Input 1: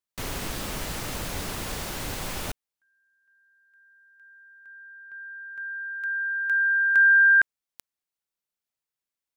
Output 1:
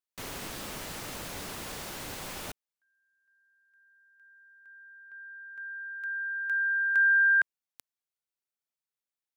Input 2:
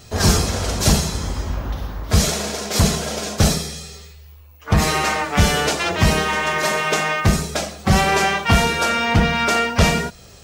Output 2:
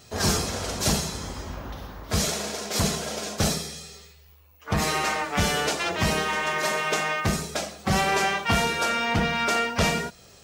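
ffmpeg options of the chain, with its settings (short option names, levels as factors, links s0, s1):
-af "lowshelf=f=100:g=-10.5,volume=0.531"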